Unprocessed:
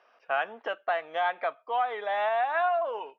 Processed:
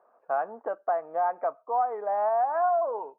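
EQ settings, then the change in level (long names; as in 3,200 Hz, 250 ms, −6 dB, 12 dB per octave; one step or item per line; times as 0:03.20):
low-pass filter 1,100 Hz 24 dB per octave
+2.5 dB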